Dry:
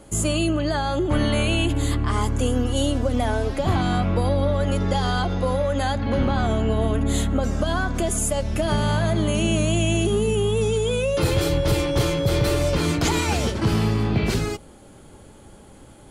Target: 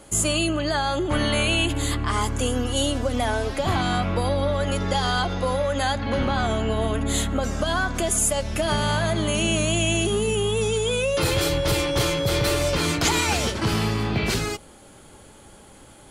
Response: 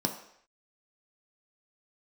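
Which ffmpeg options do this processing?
-af "tiltshelf=f=670:g=-4"

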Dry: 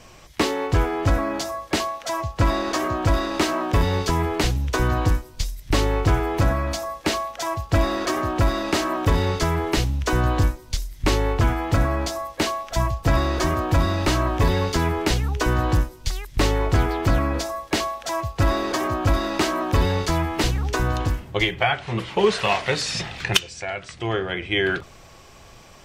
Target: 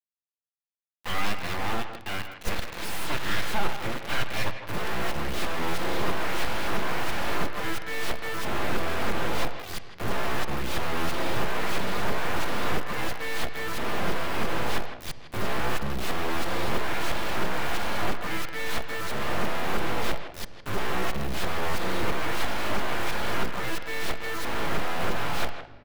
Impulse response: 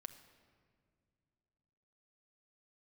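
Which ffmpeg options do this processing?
-filter_complex "[0:a]areverse,highpass=f=110:p=1,bandreject=f=60:t=h:w=6,bandreject=f=120:t=h:w=6,bandreject=f=180:t=h:w=6,bandreject=f=240:t=h:w=6,bandreject=f=300:t=h:w=6,bandreject=f=360:t=h:w=6,bandreject=f=420:t=h:w=6,bandreject=f=480:t=h:w=6,bandreject=f=540:t=h:w=6,aeval=exprs='abs(val(0))':c=same,acrusher=bits=4:mix=0:aa=0.000001,asoftclip=type=tanh:threshold=0.2,asplit=2[s0][s1];[s1]adelay=160,highpass=300,lowpass=3400,asoftclip=type=hard:threshold=0.0668,volume=0.355[s2];[s0][s2]amix=inputs=2:normalize=0,asplit=2[s3][s4];[1:a]atrim=start_sample=2205,lowpass=4200[s5];[s4][s5]afir=irnorm=-1:irlink=0,volume=2.37[s6];[s3][s6]amix=inputs=2:normalize=0,volume=0.376"

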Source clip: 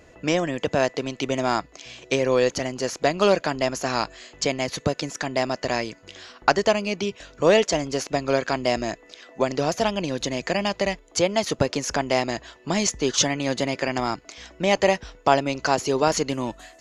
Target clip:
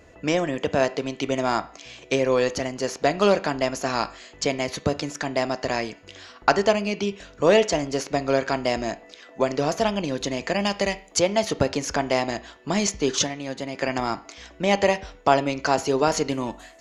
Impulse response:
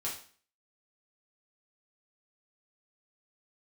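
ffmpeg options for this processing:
-filter_complex "[0:a]asettb=1/sr,asplit=3[s0][s1][s2];[s0]atrim=end=10.604[s3];[s1]atrim=start=10.6:end=11.2,asetpts=PTS-STARTPTS,afade=t=in:d=0.004:c=qsin,afade=t=out:st=0.596:d=0.004:c=qsin,highshelf=f=4500:g=7[s4];[s2]atrim=start=11.196[s5];[s3][s4]acrossfade=d=0.004:c1=hsin:c2=qsin[s6];[s6][s5]acrossfade=d=0.004:c1=qsin:c2=hsin,asplit=3[s7][s8][s9];[s7]afade=t=out:st=13.18:d=0.02[s10];[s8]agate=range=0.447:threshold=0.112:ratio=16:detection=peak,afade=t=in:st=13.18:d=0.02,afade=t=out:st=13.74:d=0.02[s11];[s9]afade=t=in:st=13.74:d=0.02[s12];[s10][s11][s12]amix=inputs=3:normalize=0,asplit=2[s13][s14];[1:a]atrim=start_sample=2205,lowpass=3100[s15];[s14][s15]afir=irnorm=-1:irlink=0,volume=0.266[s16];[s13][s16]amix=inputs=2:normalize=0,volume=0.841"

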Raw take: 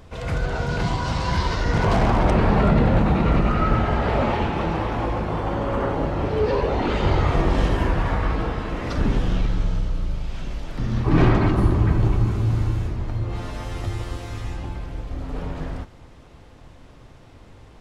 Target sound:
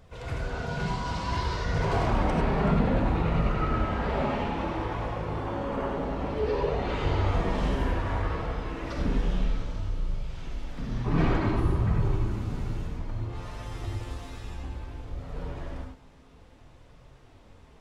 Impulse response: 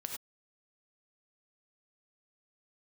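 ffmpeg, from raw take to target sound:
-filter_complex "[0:a]flanger=delay=1.4:depth=3.8:regen=-46:speed=0.59:shape=triangular[s0];[1:a]atrim=start_sample=2205[s1];[s0][s1]afir=irnorm=-1:irlink=0,volume=0.794"

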